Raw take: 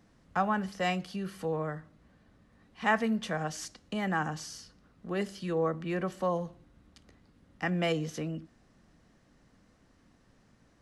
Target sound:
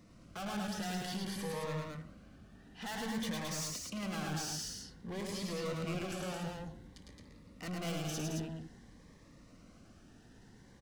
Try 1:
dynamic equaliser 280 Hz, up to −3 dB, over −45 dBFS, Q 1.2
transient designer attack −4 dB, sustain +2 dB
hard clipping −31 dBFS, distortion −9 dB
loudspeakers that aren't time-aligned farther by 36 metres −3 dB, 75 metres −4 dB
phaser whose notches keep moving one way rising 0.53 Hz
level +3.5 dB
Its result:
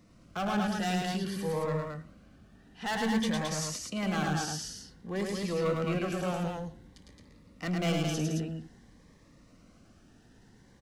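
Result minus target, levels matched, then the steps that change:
hard clipping: distortion −6 dB
change: hard clipping −42 dBFS, distortion −3 dB

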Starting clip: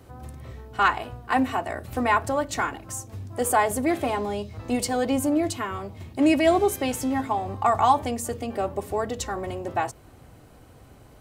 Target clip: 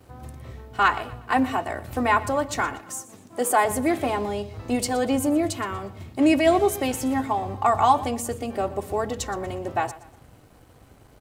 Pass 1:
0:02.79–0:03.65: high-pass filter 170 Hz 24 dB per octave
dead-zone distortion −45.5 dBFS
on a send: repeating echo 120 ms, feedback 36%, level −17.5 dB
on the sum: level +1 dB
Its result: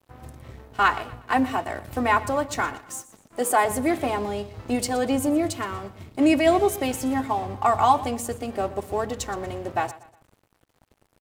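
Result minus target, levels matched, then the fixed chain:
dead-zone distortion: distortion +11 dB
0:02.79–0:03.65: high-pass filter 170 Hz 24 dB per octave
dead-zone distortion −57.5 dBFS
on a send: repeating echo 120 ms, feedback 36%, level −17.5 dB
on the sum: level +1 dB

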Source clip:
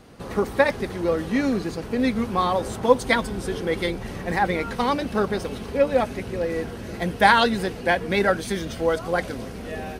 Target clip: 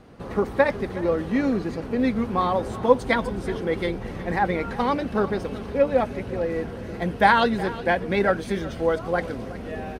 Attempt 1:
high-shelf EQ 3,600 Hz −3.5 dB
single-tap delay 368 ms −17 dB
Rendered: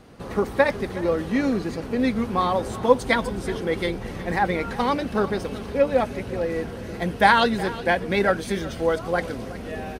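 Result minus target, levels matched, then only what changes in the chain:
8,000 Hz band +6.0 dB
change: high-shelf EQ 3,600 Hz −11.5 dB

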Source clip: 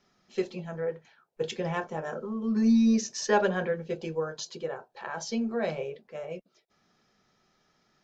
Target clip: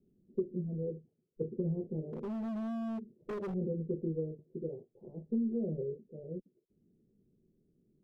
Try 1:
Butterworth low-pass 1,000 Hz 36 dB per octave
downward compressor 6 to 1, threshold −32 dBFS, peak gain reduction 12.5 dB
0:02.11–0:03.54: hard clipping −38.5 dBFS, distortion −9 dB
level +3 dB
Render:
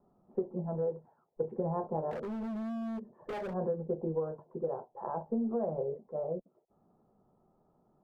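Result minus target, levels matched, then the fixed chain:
1,000 Hz band +11.0 dB
Butterworth low-pass 410 Hz 36 dB per octave
downward compressor 6 to 1, threshold −32 dBFS, peak gain reduction 12.5 dB
0:02.11–0:03.54: hard clipping −38.5 dBFS, distortion −8 dB
level +3 dB

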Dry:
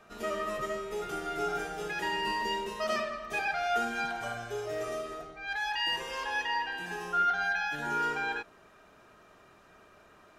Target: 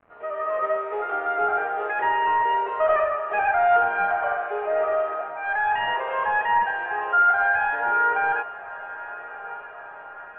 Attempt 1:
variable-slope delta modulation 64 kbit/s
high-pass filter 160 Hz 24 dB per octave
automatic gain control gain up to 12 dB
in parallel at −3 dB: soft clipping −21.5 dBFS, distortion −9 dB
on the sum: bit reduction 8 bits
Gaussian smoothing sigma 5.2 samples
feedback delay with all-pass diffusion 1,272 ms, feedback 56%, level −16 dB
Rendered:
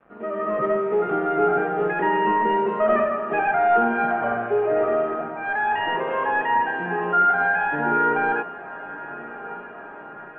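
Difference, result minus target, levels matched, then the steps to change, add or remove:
125 Hz band +14.0 dB
change: high-pass filter 550 Hz 24 dB per octave

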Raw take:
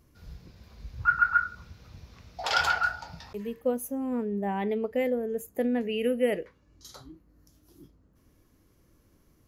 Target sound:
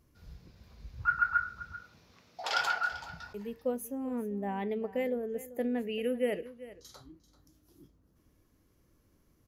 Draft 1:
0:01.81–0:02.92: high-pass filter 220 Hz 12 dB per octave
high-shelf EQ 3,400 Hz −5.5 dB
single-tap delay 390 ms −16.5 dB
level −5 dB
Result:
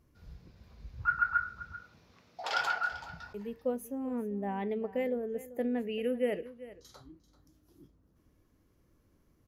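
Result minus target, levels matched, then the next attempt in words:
8,000 Hz band −4.0 dB
0:01.81–0:02.92: high-pass filter 220 Hz 12 dB per octave
single-tap delay 390 ms −16.5 dB
level −5 dB

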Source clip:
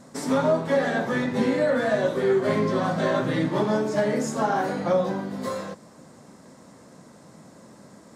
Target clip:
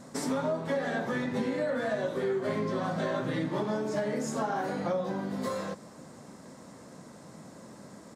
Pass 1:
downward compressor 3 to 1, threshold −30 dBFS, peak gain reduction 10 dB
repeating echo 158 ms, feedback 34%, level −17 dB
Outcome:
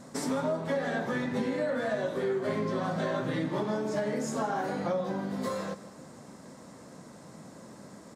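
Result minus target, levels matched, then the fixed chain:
echo-to-direct +11 dB
downward compressor 3 to 1, threshold −30 dBFS, peak gain reduction 10 dB
repeating echo 158 ms, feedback 34%, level −28 dB

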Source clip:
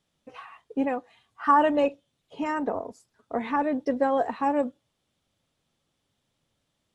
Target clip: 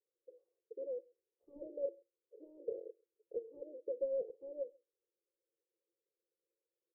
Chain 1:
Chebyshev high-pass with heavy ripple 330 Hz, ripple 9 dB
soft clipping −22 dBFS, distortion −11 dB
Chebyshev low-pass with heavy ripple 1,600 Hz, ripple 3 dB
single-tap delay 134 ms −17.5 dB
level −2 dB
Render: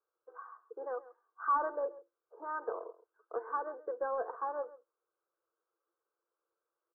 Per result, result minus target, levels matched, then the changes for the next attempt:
echo-to-direct +11 dB; 500 Hz band −4.0 dB
change: single-tap delay 134 ms −28.5 dB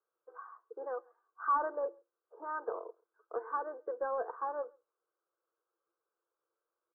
500 Hz band −4.0 dB
change: Chebyshev low-pass with heavy ripple 560 Hz, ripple 3 dB

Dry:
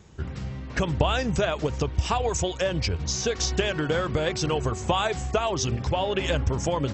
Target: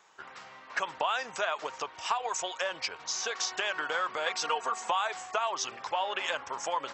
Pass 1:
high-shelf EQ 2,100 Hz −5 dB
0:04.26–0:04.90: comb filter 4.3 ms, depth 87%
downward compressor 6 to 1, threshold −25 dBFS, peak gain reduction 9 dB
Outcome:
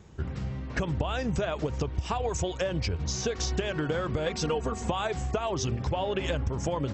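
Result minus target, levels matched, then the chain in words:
1,000 Hz band −5.5 dB
high-pass with resonance 1,000 Hz, resonance Q 1.5
high-shelf EQ 2,100 Hz −5 dB
0:04.26–0:04.90: comb filter 4.3 ms, depth 87%
downward compressor 6 to 1, threshold −25 dBFS, peak gain reduction 6 dB

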